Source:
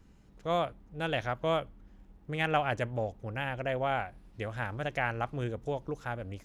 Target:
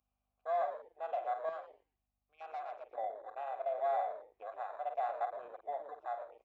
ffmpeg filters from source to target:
ffmpeg -i in.wav -filter_complex "[0:a]asplit=3[link_01][link_02][link_03];[link_01]bandpass=frequency=730:width_type=q:width=8,volume=0dB[link_04];[link_02]bandpass=frequency=1090:width_type=q:width=8,volume=-6dB[link_05];[link_03]bandpass=frequency=2440:width_type=q:width=8,volume=-9dB[link_06];[link_04][link_05][link_06]amix=inputs=3:normalize=0,asplit=2[link_07][link_08];[link_08]adelay=48,volume=-11dB[link_09];[link_07][link_09]amix=inputs=2:normalize=0,asoftclip=type=tanh:threshold=-33.5dB,lowpass=4300,asplit=5[link_10][link_11][link_12][link_13][link_14];[link_11]adelay=115,afreqshift=-120,volume=-9dB[link_15];[link_12]adelay=230,afreqshift=-240,volume=-18.4dB[link_16];[link_13]adelay=345,afreqshift=-360,volume=-27.7dB[link_17];[link_14]adelay=460,afreqshift=-480,volume=-37.1dB[link_18];[link_10][link_15][link_16][link_17][link_18]amix=inputs=5:normalize=0,aeval=exprs='val(0)+0.00178*(sin(2*PI*50*n/s)+sin(2*PI*2*50*n/s)/2+sin(2*PI*3*50*n/s)/3+sin(2*PI*4*50*n/s)/4+sin(2*PI*5*50*n/s)/5)':channel_layout=same,asetnsamples=nb_out_samples=441:pad=0,asendcmd='1.49 equalizer g 3;2.93 equalizer g 13.5',equalizer=frequency=680:width=0.63:gain=13,afwtdn=0.0126,aderivative,volume=12.5dB" out.wav

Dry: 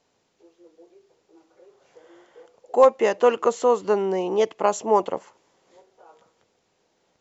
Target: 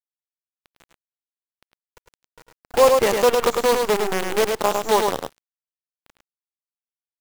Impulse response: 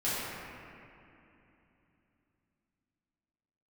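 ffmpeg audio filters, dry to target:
-af "acrusher=bits=4:dc=4:mix=0:aa=0.000001,aecho=1:1:90|105:0.1|0.596"

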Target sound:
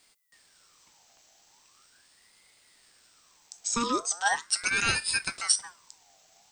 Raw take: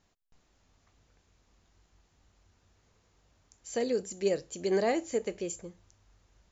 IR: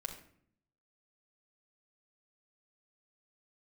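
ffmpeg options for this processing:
-filter_complex "[0:a]asettb=1/sr,asplit=3[link_01][link_02][link_03];[link_01]atrim=end=3.684[link_04];[link_02]atrim=start=3.68:end=4.5,asetpts=PTS-STARTPTS,afade=type=in:duration=0.004:curve=qsin,afade=type=out:start_time=0.816:duration=0.004:curve=qsin,tiltshelf=frequency=970:gain=4[link_05];[link_03]atrim=start=4.496[link_06];[link_04][link_05]acrossfade=duration=0.004:curve1=hsin:curve2=qsin[link_07];[link_07][link_06]acrossfade=duration=0.004:curve1=qsin:curve2=hsin,crystalizer=i=10:c=0,aeval=exprs='val(0)*sin(2*PI*1400*n/s+1400*0.5/0.4*sin(2*PI*0.4*n/s))':channel_layout=same"

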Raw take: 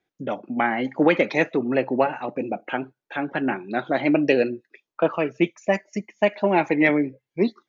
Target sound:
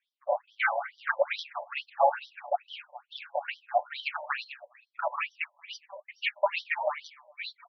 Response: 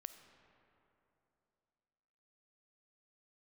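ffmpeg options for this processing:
-filter_complex "[0:a]aecho=1:1:7:0.92,acrossover=split=370|1300[link_01][link_02][link_03];[link_02]aeval=exprs='sgn(val(0))*max(abs(val(0))-0.0112,0)':channel_layout=same[link_04];[link_01][link_04][link_03]amix=inputs=3:normalize=0,flanger=delay=1.1:depth=8.6:regen=-48:speed=1.6:shape=triangular,asplit=2[link_05][link_06];[link_06]aeval=exprs='0.562*sin(PI/2*2.82*val(0)/0.562)':channel_layout=same,volume=-4dB[link_07];[link_05][link_07]amix=inputs=2:normalize=0,aecho=1:1:205|410:0.158|0.0254,afftfilt=real='re*between(b*sr/1024,720*pow(4300/720,0.5+0.5*sin(2*PI*2.3*pts/sr))/1.41,720*pow(4300/720,0.5+0.5*sin(2*PI*2.3*pts/sr))*1.41)':imag='im*between(b*sr/1024,720*pow(4300/720,0.5+0.5*sin(2*PI*2.3*pts/sr))/1.41,720*pow(4300/720,0.5+0.5*sin(2*PI*2.3*pts/sr))*1.41)':win_size=1024:overlap=0.75,volume=-7dB"

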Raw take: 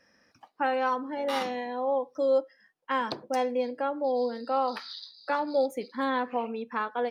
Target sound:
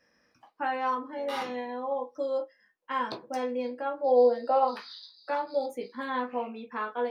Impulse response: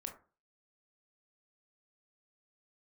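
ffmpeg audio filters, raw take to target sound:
-filter_complex "[0:a]asplit=3[link_01][link_02][link_03];[link_01]afade=type=out:start_time=4.05:duration=0.02[link_04];[link_02]equalizer=frequency=610:width_type=o:width=0.88:gain=13.5,afade=type=in:start_time=4.05:duration=0.02,afade=type=out:start_time=4.64:duration=0.02[link_05];[link_03]afade=type=in:start_time=4.64:duration=0.02[link_06];[link_04][link_05][link_06]amix=inputs=3:normalize=0[link_07];[1:a]atrim=start_sample=2205,afade=type=out:start_time=0.16:duration=0.01,atrim=end_sample=7497,asetrate=83790,aresample=44100[link_08];[link_07][link_08]afir=irnorm=-1:irlink=0,volume=5.5dB"

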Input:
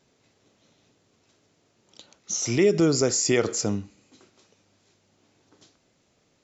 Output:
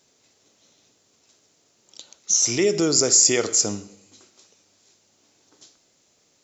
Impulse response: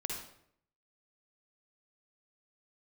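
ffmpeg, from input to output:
-filter_complex "[0:a]bass=frequency=250:gain=-6,treble=frequency=4000:gain=11,asplit=2[link_01][link_02];[1:a]atrim=start_sample=2205,asetrate=36603,aresample=44100[link_03];[link_02][link_03]afir=irnorm=-1:irlink=0,volume=-15dB[link_04];[link_01][link_04]amix=inputs=2:normalize=0,volume=-1dB"

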